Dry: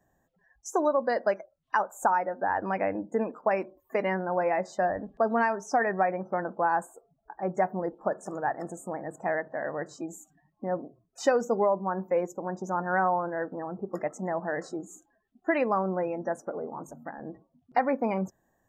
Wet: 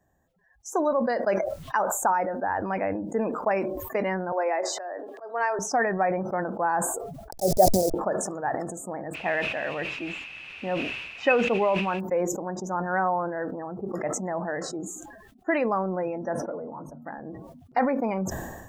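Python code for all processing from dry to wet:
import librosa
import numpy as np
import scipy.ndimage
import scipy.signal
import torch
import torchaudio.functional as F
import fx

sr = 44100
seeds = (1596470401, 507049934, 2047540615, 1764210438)

y = fx.chain(x, sr, fx.steep_highpass(hz=320.0, slope=48),
    fx.auto_swell(attack_ms=230.0), at=(4.32, 5.59))
y = fx.chain(y, sr, fx.delta_hold(step_db=-35.0),
    fx.curve_eq(hz=(270.0, 660.0, 1100.0, 3000.0, 5000.0), db=(0, 10, -21, -14, 12)), at=(7.31, 7.94))
y = fx.dmg_noise_colour(y, sr, seeds[0], colour='white', level_db=-47.0, at=(9.13, 11.99), fade=0.02)
y = fx.lowpass_res(y, sr, hz=2600.0, q=14.0, at=(9.13, 11.99), fade=0.02)
y = fx.chain(y, sr, fx.moving_average(points=6),
    fx.notch_comb(f0_hz=390.0), at=(16.33, 17.02))
y = fx.peak_eq(y, sr, hz=76.0, db=6.5, octaves=0.77)
y = fx.sustainer(y, sr, db_per_s=42.0)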